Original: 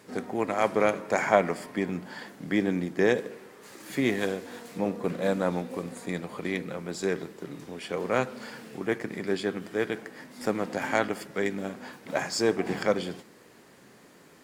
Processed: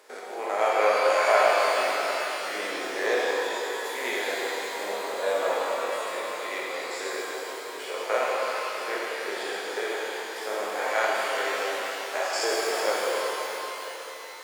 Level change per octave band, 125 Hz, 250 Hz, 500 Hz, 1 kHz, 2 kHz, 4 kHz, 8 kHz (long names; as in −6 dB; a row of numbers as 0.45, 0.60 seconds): below −25 dB, −11.5 dB, +2.0 dB, +6.5 dB, +5.5 dB, +8.0 dB, +6.5 dB